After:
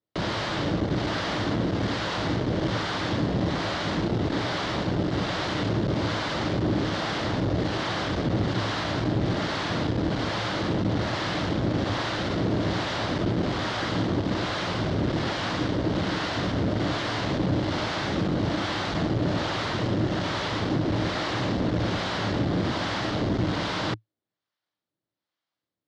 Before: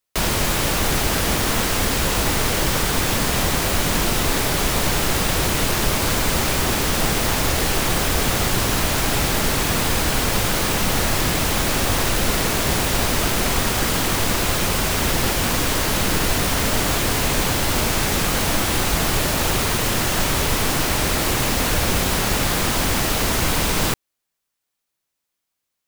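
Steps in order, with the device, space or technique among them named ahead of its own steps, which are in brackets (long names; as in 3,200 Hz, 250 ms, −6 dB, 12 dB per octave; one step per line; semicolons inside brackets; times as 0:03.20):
guitar amplifier with harmonic tremolo (two-band tremolo in antiphase 1.2 Hz, depth 70%, crossover 600 Hz; soft clipping −22 dBFS, distortion −12 dB; loudspeaker in its box 78–4,400 Hz, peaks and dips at 110 Hz +9 dB, 180 Hz +6 dB, 310 Hz +9 dB, 600 Hz +4 dB, 2,500 Hz −7 dB)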